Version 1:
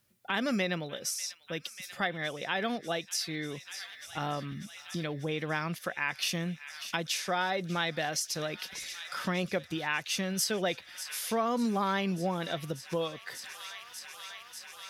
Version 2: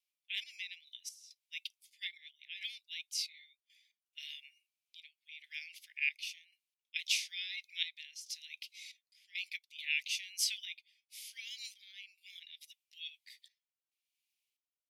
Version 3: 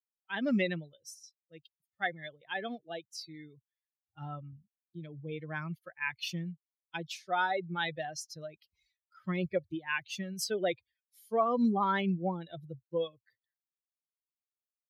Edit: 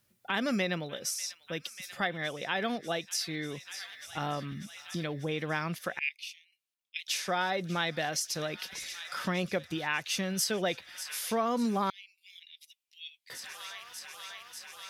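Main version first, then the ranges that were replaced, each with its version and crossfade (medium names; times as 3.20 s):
1
5.99–7.08 s: from 2
11.90–13.30 s: from 2
not used: 3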